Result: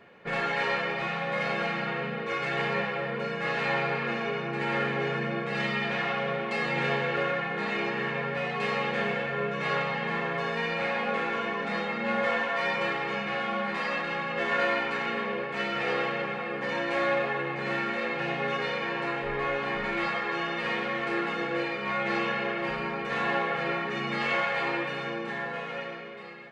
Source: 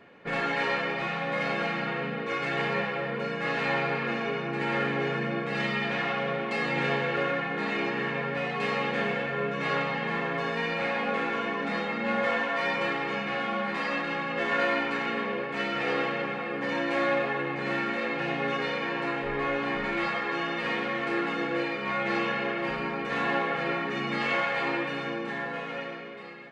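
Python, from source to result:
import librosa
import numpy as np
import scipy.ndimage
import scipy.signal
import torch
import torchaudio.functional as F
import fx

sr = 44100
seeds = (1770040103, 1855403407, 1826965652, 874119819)

y = fx.peak_eq(x, sr, hz=280.0, db=-10.0, octaves=0.22)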